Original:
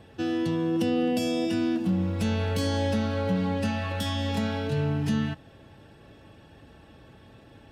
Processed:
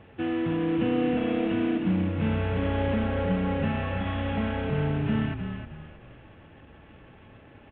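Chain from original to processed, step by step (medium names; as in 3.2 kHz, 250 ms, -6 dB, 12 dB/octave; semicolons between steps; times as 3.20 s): CVSD coder 16 kbps; frequency-shifting echo 311 ms, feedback 32%, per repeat -32 Hz, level -7.5 dB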